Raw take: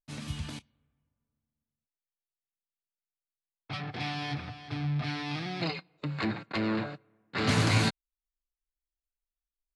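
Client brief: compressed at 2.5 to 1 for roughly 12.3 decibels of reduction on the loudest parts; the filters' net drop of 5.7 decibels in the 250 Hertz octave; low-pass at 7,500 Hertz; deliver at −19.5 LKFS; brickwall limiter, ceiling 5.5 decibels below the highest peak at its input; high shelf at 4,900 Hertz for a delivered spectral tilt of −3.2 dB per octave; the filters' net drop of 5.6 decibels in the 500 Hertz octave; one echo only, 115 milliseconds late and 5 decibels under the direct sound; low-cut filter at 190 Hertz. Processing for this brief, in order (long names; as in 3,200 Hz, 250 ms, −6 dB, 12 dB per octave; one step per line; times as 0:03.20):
high-pass filter 190 Hz
low-pass filter 7,500 Hz
parametric band 250 Hz −3.5 dB
parametric band 500 Hz −6 dB
high-shelf EQ 4,900 Hz −7 dB
downward compressor 2.5 to 1, threshold −46 dBFS
brickwall limiter −36 dBFS
single-tap delay 115 ms −5 dB
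level +26.5 dB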